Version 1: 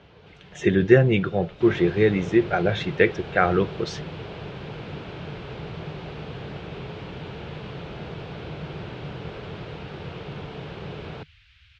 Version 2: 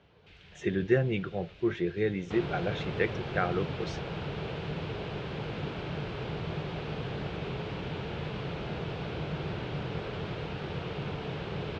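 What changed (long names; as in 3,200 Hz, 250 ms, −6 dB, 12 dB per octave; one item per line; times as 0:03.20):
speech −10.0 dB
second sound: entry +0.70 s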